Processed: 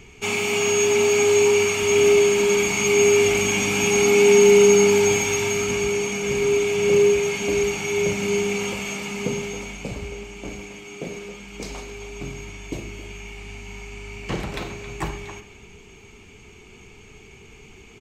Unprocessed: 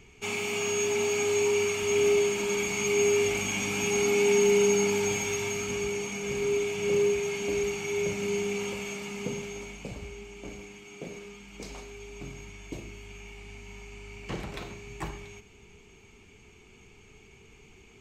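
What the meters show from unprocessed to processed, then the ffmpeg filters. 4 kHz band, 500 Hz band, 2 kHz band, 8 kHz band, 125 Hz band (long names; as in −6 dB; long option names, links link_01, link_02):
+8.0 dB, +8.5 dB, +8.0 dB, +8.0 dB, +8.0 dB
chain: -filter_complex "[0:a]asplit=2[link_01][link_02];[link_02]adelay=270,highpass=300,lowpass=3400,asoftclip=type=hard:threshold=-22dB,volume=-11dB[link_03];[link_01][link_03]amix=inputs=2:normalize=0,volume=8dB"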